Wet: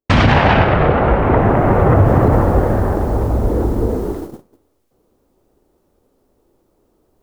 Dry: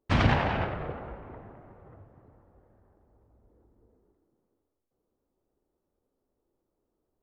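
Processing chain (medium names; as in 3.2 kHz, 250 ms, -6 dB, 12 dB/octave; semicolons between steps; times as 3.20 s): recorder AGC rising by 19 dB/s; gate -42 dBFS, range -28 dB; loudness maximiser +18.5 dB; trim -1 dB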